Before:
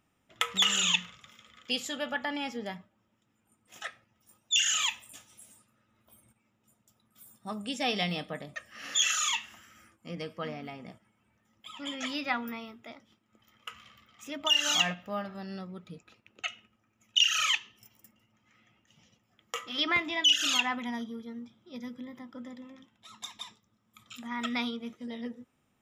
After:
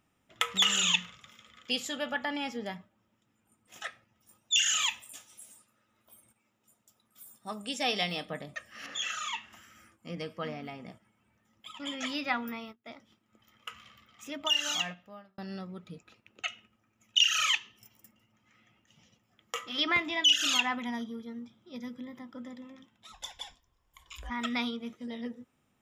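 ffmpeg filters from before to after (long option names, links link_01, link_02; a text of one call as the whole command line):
ffmpeg -i in.wav -filter_complex "[0:a]asettb=1/sr,asplit=3[link_01][link_02][link_03];[link_01]atrim=end=5.024[link_04];[link_02]atrim=start=5.02:end=8.25,asetpts=PTS-STARTPTS,afade=type=in:duration=0.004:curve=qsin,afade=type=out:start_time=3.226:duration=0.004:curve=qsin,bass=frequency=250:gain=-7,treble=frequency=4000:gain=3[link_05];[link_03]atrim=start=8.246[link_06];[link_04][link_05]acrossfade=duration=0.004:curve1=hsin:curve2=qsin[link_07];[link_07][link_06]acrossfade=duration=0.004:curve1=qsin:curve2=hsin,asettb=1/sr,asplit=3[link_08][link_09][link_10];[link_08]atrim=end=8.864[link_11];[link_09]atrim=start=8.86:end=9.53,asetpts=PTS-STARTPTS,afade=type=in:duration=0.004:curve=qsin,afade=type=out:start_time=0.666:duration=0.004:curve=qsin,lowpass=frequency=1500:poles=1[link_12];[link_10]atrim=start=9.526[link_13];[link_11][link_12]acrossfade=duration=0.004:curve1=hsin:curve2=qsin[link_14];[link_14][link_13]acrossfade=duration=0.004:curve1=qsin:curve2=hsin,asplit=3[link_15][link_16][link_17];[link_15]afade=type=out:start_time=11.68:duration=0.02[link_18];[link_16]agate=range=-24dB:threshold=-48dB:ratio=16:release=100:detection=peak,afade=type=in:start_time=11.68:duration=0.02,afade=type=out:start_time=12.85:duration=0.02[link_19];[link_17]afade=type=in:start_time=12.85:duration=0.02[link_20];[link_18][link_19][link_20]amix=inputs=3:normalize=0,asplit=3[link_21][link_22][link_23];[link_21]afade=type=out:start_time=23.12:duration=0.02[link_24];[link_22]afreqshift=-180,afade=type=in:start_time=23.12:duration=0.02,afade=type=out:start_time=24.29:duration=0.02[link_25];[link_23]afade=type=in:start_time=24.29:duration=0.02[link_26];[link_24][link_25][link_26]amix=inputs=3:normalize=0,asplit=2[link_27][link_28];[link_27]atrim=end=15.38,asetpts=PTS-STARTPTS,afade=type=out:start_time=14.24:duration=1.14[link_29];[link_28]atrim=start=15.38,asetpts=PTS-STARTPTS,afade=type=in:duration=0.004:curve=hsin[link_30];[link_29][link_30]concat=n=2:v=0:a=1" out.wav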